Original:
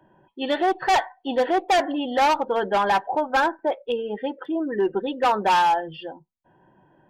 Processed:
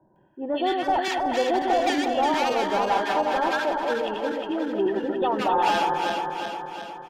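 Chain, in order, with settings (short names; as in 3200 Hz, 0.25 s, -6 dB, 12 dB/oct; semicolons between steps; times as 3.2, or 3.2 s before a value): regenerating reverse delay 0.18 s, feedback 75%, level -3.5 dB; bands offset in time lows, highs 0.16 s, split 1200 Hz; gain -3 dB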